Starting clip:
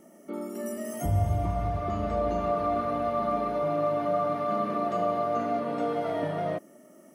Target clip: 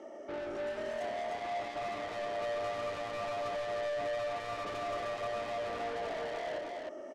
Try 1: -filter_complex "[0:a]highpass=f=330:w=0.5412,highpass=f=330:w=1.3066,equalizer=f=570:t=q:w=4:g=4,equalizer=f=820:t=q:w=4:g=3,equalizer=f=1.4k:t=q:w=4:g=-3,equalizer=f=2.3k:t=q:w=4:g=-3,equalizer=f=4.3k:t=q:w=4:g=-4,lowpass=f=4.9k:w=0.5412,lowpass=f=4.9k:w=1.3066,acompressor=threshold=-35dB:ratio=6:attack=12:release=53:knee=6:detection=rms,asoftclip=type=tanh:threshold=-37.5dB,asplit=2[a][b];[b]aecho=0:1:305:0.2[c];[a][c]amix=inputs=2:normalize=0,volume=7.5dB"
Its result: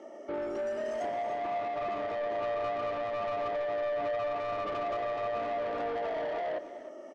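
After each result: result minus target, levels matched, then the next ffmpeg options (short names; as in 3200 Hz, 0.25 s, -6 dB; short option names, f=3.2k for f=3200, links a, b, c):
echo-to-direct -11 dB; soft clip: distortion -5 dB
-filter_complex "[0:a]highpass=f=330:w=0.5412,highpass=f=330:w=1.3066,equalizer=f=570:t=q:w=4:g=4,equalizer=f=820:t=q:w=4:g=3,equalizer=f=1.4k:t=q:w=4:g=-3,equalizer=f=2.3k:t=q:w=4:g=-3,equalizer=f=4.3k:t=q:w=4:g=-4,lowpass=f=4.9k:w=0.5412,lowpass=f=4.9k:w=1.3066,acompressor=threshold=-35dB:ratio=6:attack=12:release=53:knee=6:detection=rms,asoftclip=type=tanh:threshold=-37.5dB,asplit=2[a][b];[b]aecho=0:1:305:0.708[c];[a][c]amix=inputs=2:normalize=0,volume=7.5dB"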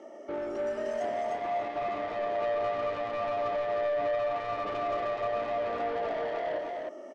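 soft clip: distortion -5 dB
-filter_complex "[0:a]highpass=f=330:w=0.5412,highpass=f=330:w=1.3066,equalizer=f=570:t=q:w=4:g=4,equalizer=f=820:t=q:w=4:g=3,equalizer=f=1.4k:t=q:w=4:g=-3,equalizer=f=2.3k:t=q:w=4:g=-3,equalizer=f=4.3k:t=q:w=4:g=-4,lowpass=f=4.9k:w=0.5412,lowpass=f=4.9k:w=1.3066,acompressor=threshold=-35dB:ratio=6:attack=12:release=53:knee=6:detection=rms,asoftclip=type=tanh:threshold=-45dB,asplit=2[a][b];[b]aecho=0:1:305:0.708[c];[a][c]amix=inputs=2:normalize=0,volume=7.5dB"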